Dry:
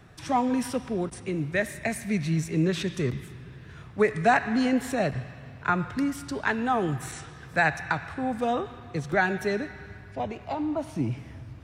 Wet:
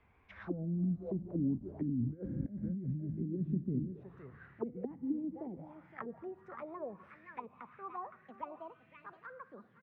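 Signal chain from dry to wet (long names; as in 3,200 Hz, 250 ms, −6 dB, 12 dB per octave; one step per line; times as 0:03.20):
gliding playback speed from 58% → 179%
source passing by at 0:02.45, 6 m/s, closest 1.3 metres
low-shelf EQ 150 Hz −2.5 dB
single-tap delay 515 ms −14.5 dB
compressor whose output falls as the input rises −41 dBFS, ratio −1
envelope-controlled low-pass 240–2,500 Hz down, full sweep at −39 dBFS
level +1.5 dB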